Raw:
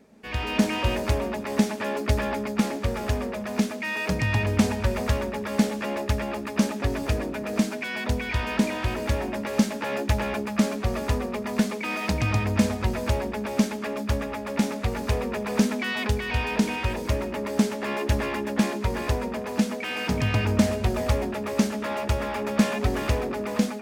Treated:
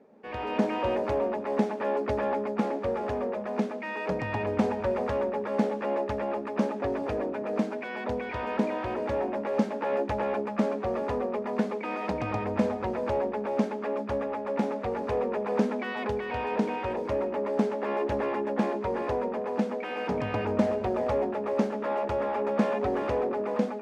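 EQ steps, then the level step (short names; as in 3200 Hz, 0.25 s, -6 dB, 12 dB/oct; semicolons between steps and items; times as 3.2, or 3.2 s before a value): band-pass 590 Hz, Q 1.2; notch 650 Hz, Q 12; +4.0 dB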